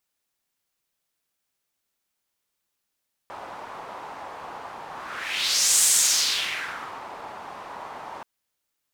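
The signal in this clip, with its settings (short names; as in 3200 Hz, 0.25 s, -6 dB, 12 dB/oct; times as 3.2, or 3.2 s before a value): whoosh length 4.93 s, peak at 2.55, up 1.00 s, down 1.24 s, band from 910 Hz, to 7900 Hz, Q 2.4, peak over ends 20.5 dB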